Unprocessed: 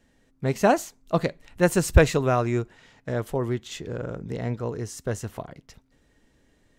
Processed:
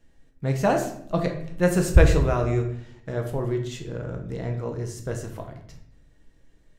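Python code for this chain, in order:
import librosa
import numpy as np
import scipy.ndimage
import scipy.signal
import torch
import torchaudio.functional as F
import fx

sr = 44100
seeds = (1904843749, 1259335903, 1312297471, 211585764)

y = fx.low_shelf(x, sr, hz=81.0, db=10.0)
y = fx.room_shoebox(y, sr, seeds[0], volume_m3=140.0, walls='mixed', distance_m=0.65)
y = y * 10.0 ** (-4.0 / 20.0)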